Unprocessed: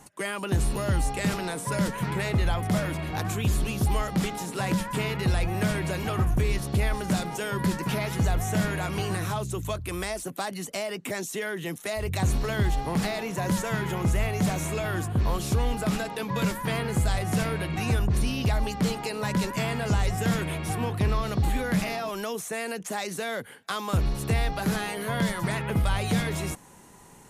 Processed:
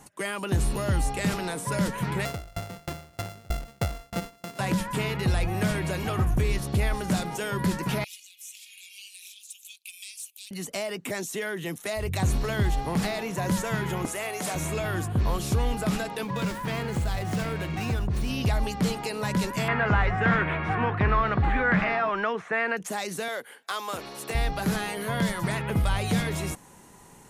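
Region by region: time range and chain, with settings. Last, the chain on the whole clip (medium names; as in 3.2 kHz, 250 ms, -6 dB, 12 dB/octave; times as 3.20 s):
2.25–4.59 s: sorted samples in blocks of 64 samples + sawtooth tremolo in dB decaying 3.2 Hz, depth 31 dB
8.04–10.51 s: compression 4:1, threshold -31 dBFS + Chebyshev high-pass 2.4 kHz, order 6 + phaser 1.6 Hz, delay 4.1 ms, feedback 32%
14.05–14.55 s: high-pass 390 Hz + peaking EQ 9.4 kHz +6.5 dB 0.81 oct
16.24–18.30 s: compression 1.5:1, threshold -28 dBFS + sliding maximum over 3 samples
19.68–22.77 s: low-pass 2.1 kHz + peaking EQ 1.6 kHz +12.5 dB 1.8 oct
23.28–24.35 s: high-pass 420 Hz + hard clipper -22.5 dBFS
whole clip: none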